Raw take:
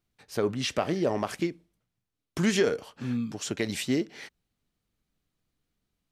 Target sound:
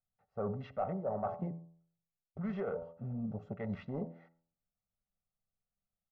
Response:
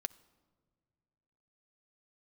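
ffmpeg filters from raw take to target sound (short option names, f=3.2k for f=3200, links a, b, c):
-filter_complex "[0:a]afwtdn=0.0158,aecho=1:1:1.5:0.89,bandreject=f=83.46:t=h:w=4,bandreject=f=166.92:t=h:w=4,bandreject=f=250.38:t=h:w=4,bandreject=f=333.84:t=h:w=4,bandreject=f=417.3:t=h:w=4,bandreject=f=500.76:t=h:w=4,bandreject=f=584.22:t=h:w=4,bandreject=f=667.68:t=h:w=4,bandreject=f=751.14:t=h:w=4,bandreject=f=834.6:t=h:w=4,bandreject=f=918.06:t=h:w=4,bandreject=f=1.00152k:t=h:w=4,bandreject=f=1.08498k:t=h:w=4,areverse,acompressor=threshold=-33dB:ratio=6,areverse,asoftclip=type=tanh:threshold=-26.5dB,lowpass=f=1k:t=q:w=1.7[a];[1:a]atrim=start_sample=2205,atrim=end_sample=6615[b];[a][b]afir=irnorm=-1:irlink=0"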